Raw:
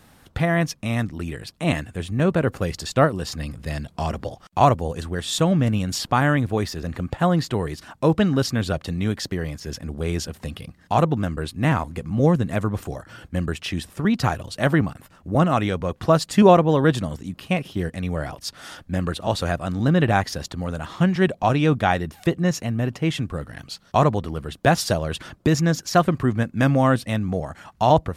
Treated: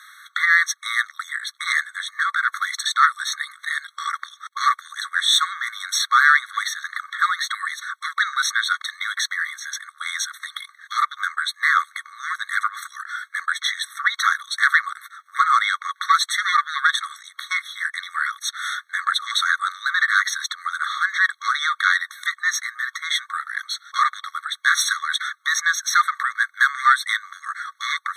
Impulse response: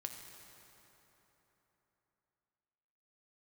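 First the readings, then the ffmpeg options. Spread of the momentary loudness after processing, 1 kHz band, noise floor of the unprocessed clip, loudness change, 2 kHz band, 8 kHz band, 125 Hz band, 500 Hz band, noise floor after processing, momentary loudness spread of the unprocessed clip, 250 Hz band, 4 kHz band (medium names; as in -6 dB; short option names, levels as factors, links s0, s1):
12 LU, +2.5 dB, -55 dBFS, +1.0 dB, +11.5 dB, +7.0 dB, under -40 dB, under -40 dB, -58 dBFS, 12 LU, under -40 dB, +8.5 dB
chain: -filter_complex "[0:a]asuperstop=centerf=4900:order=4:qfactor=4,asplit=2[s0][s1];[s1]highpass=f=720:p=1,volume=7.94,asoftclip=type=tanh:threshold=0.794[s2];[s0][s2]amix=inputs=2:normalize=0,lowpass=f=3900:p=1,volume=0.501,afftfilt=real='re*eq(mod(floor(b*sr/1024/1100),2),1)':imag='im*eq(mod(floor(b*sr/1024/1100),2),1)':win_size=1024:overlap=0.75,volume=1.5"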